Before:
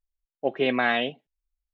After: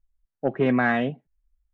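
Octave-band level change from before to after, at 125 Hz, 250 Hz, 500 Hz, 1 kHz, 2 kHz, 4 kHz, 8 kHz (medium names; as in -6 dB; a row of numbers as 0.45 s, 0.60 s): +12.0 dB, +6.5 dB, +1.0 dB, +0.5 dB, 0.0 dB, -11.5 dB, no reading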